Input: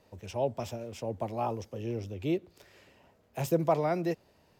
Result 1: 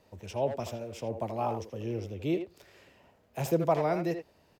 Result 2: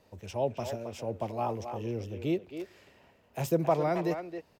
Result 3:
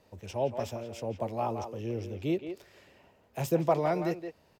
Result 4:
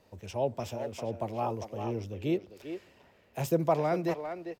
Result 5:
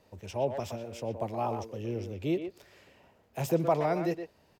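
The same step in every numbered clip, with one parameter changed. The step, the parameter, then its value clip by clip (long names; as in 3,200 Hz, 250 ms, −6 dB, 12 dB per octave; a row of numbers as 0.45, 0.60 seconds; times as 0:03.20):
far-end echo of a speakerphone, delay time: 80, 270, 170, 400, 120 milliseconds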